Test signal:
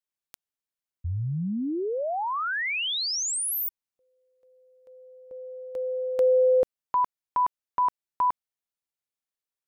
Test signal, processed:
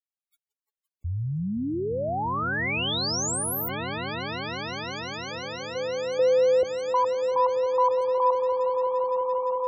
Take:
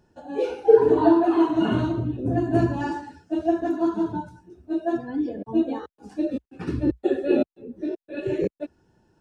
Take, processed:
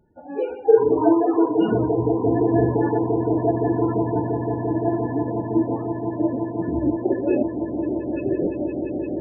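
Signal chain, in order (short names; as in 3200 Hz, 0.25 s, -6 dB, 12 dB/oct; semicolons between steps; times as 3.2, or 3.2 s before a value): swelling echo 0.172 s, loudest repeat 8, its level -11.5 dB; loudest bins only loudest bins 32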